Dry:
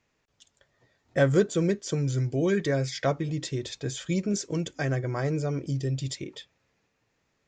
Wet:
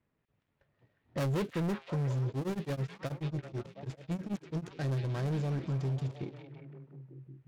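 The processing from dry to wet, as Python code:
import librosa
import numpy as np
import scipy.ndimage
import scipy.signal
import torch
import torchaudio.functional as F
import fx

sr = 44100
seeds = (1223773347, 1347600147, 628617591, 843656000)

y = fx.dead_time(x, sr, dead_ms=0.17)
y = fx.env_lowpass(y, sr, base_hz=2500.0, full_db=-22.0)
y = fx.peak_eq(y, sr, hz=140.0, db=8.0, octaves=2.4)
y = 10.0 ** (-21.5 / 20.0) * np.tanh(y / 10.0 ** (-21.5 / 20.0))
y = fx.echo_stepped(y, sr, ms=179, hz=3000.0, octaves=-0.7, feedback_pct=70, wet_db=-1.0)
y = fx.tremolo_abs(y, sr, hz=9.2, at=(2.28, 4.71))
y = F.gain(torch.from_numpy(y), -7.0).numpy()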